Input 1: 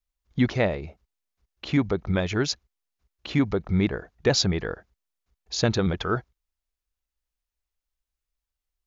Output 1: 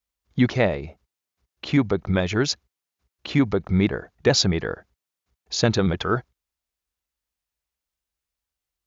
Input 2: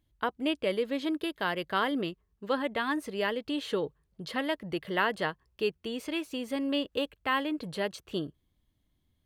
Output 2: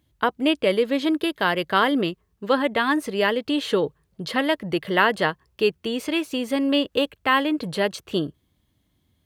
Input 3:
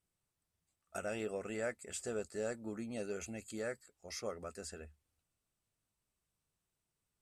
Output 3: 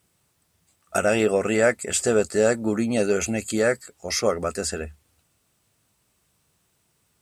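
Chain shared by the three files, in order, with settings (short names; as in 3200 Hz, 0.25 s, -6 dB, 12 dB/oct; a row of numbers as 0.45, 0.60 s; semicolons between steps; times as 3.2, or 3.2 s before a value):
HPF 68 Hz; match loudness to -23 LUFS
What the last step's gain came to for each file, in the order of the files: +3.0, +9.0, +19.5 dB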